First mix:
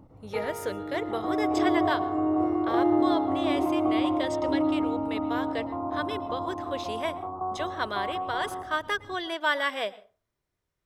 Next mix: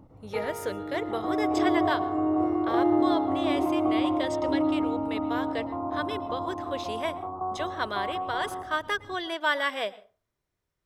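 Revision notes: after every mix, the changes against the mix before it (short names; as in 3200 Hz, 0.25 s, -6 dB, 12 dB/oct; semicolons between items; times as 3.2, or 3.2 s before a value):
none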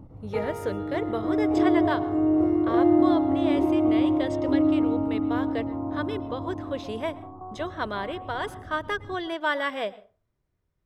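speech: add high shelf 3300 Hz -7 dB; second sound -10.5 dB; master: add low shelf 290 Hz +9.5 dB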